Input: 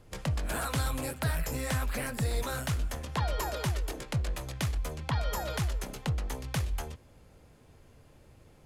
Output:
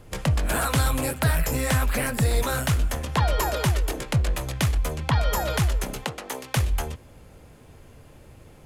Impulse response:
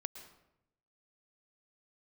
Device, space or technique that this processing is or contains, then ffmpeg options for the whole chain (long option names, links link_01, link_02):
exciter from parts: -filter_complex "[0:a]asettb=1/sr,asplit=3[link_01][link_02][link_03];[link_01]atrim=end=6.044[link_04];[link_02]atrim=start=6.04:end=6.57,asetpts=PTS-STARTPTS,afade=type=in:duration=0.004:curve=qsin,afade=type=out:start_time=0.526:duration=0.004:curve=qsin,highpass=320[link_05];[link_03]atrim=start=6.566[link_06];[link_04][link_05]acrossfade=duration=0.004:curve1=hsin:curve2=qsin[link_07];[link_07][link_06]acrossfade=duration=0.004:curve1=qsin:curve2=hsin,asplit=2[link_08][link_09];[link_09]highpass=frequency=2900:width=0.5412,highpass=frequency=2900:width=1.3066,asoftclip=type=tanh:threshold=-35dB,highpass=3900,volume=-12dB[link_10];[link_08][link_10]amix=inputs=2:normalize=0,volume=8.5dB"